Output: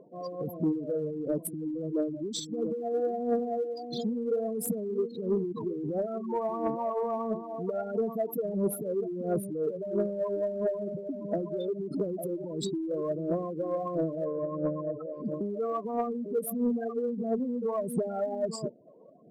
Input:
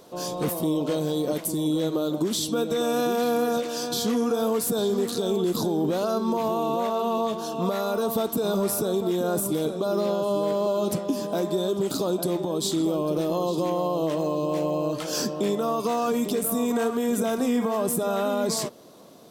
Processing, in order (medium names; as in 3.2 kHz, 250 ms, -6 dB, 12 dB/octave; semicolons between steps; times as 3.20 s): spectral gate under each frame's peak -10 dB strong; phaser 1.5 Hz, delay 2.4 ms, feedback 58%; 14.24–15.26 s: Gaussian low-pass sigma 5 samples; saturation -11.5 dBFS, distortion -25 dB; trim -6 dB